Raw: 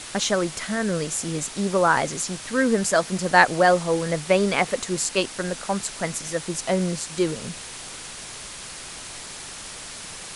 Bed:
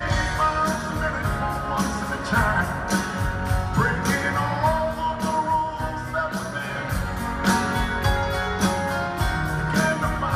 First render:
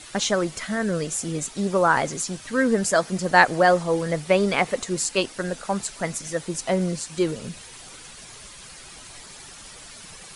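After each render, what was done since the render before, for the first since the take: denoiser 9 dB, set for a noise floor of -38 dBFS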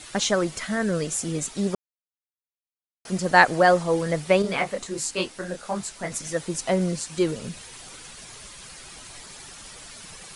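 1.75–3.05 mute; 4.42–6.12 detuned doubles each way 50 cents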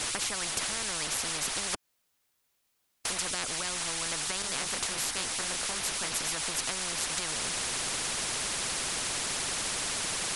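compressor 2.5:1, threshold -28 dBFS, peak gain reduction 12.5 dB; spectral compressor 10:1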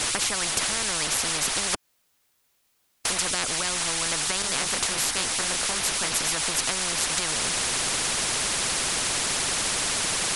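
gain +6.5 dB

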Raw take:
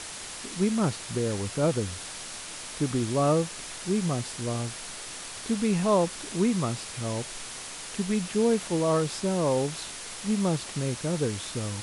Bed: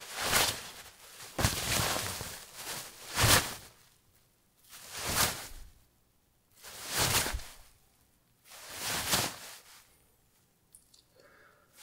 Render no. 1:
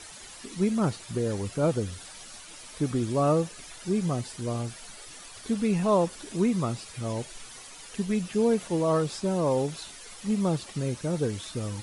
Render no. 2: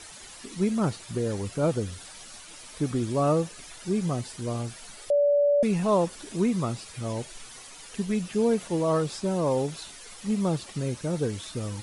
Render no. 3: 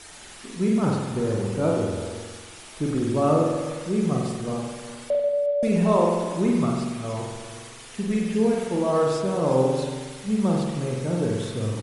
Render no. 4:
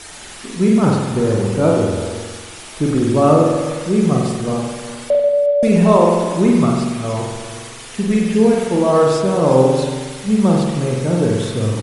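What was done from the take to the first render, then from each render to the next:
denoiser 11 dB, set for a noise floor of -40 dBFS
5.1–5.63 bleep 577 Hz -18 dBFS
echo 0.36 s -15 dB; spring tank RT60 1.3 s, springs 46 ms, chirp 70 ms, DRR -1.5 dB
gain +8.5 dB; limiter -1 dBFS, peak gain reduction 1.5 dB

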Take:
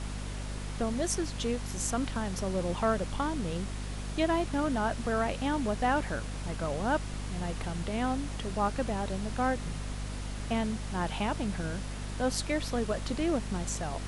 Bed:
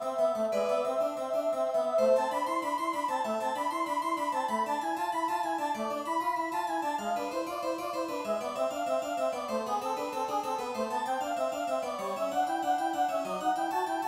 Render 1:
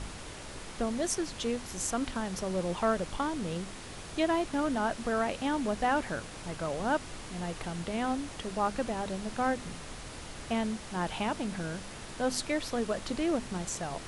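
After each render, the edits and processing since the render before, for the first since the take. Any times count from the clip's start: de-hum 50 Hz, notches 5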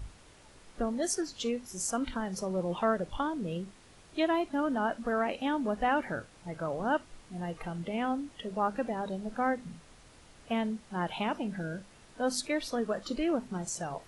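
noise print and reduce 13 dB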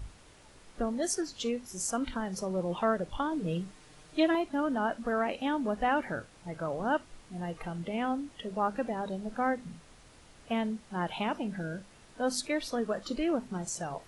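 3.31–4.35 comb 6.6 ms, depth 71%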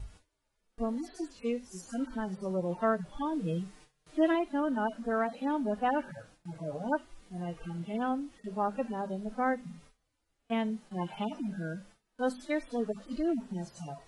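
median-filter separation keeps harmonic; gate with hold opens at -45 dBFS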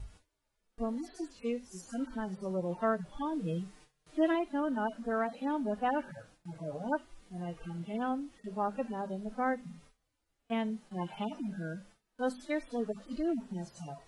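gain -2 dB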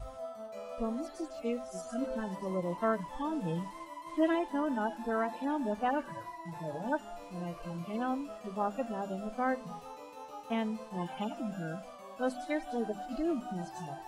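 add bed -14.5 dB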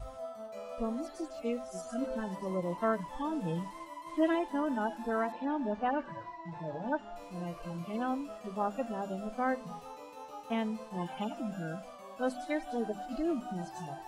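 5.32–7.16 air absorption 140 m

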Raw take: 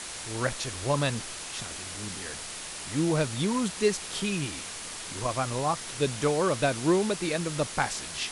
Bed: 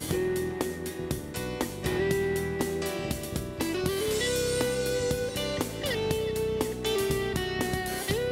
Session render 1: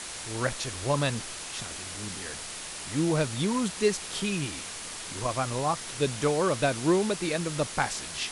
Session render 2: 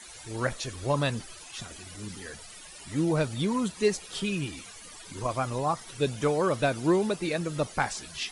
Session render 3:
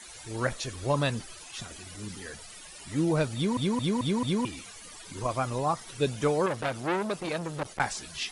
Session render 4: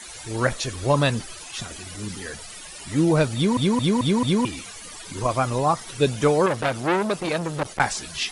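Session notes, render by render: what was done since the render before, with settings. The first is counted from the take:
nothing audible
denoiser 15 dB, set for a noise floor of -39 dBFS
3.35 stutter in place 0.22 s, 5 plays; 6.46–7.8 core saturation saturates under 1500 Hz
gain +7 dB

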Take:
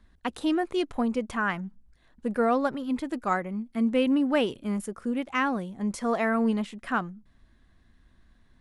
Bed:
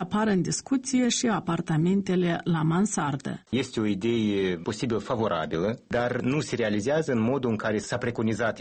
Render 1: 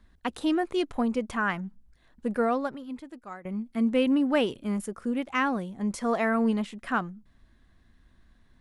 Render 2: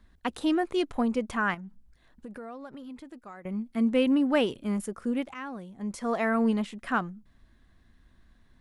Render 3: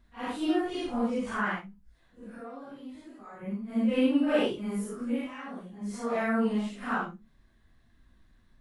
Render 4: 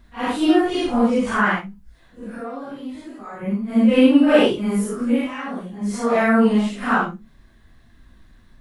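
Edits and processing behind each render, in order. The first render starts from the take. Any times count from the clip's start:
2.34–3.45 fade out quadratic, to -15.5 dB
1.54–3.44 compressor, threshold -39 dBFS; 5.34–6.41 fade in, from -15.5 dB
phase scrambler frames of 0.2 s; resonator 51 Hz, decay 0.22 s, harmonics all, mix 40%
gain +11.5 dB

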